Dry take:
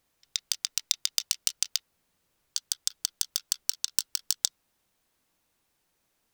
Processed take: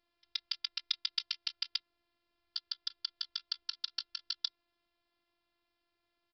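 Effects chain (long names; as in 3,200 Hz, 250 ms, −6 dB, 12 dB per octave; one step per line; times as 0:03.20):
phases set to zero 345 Hz
downsampling to 11,025 Hz
level −2 dB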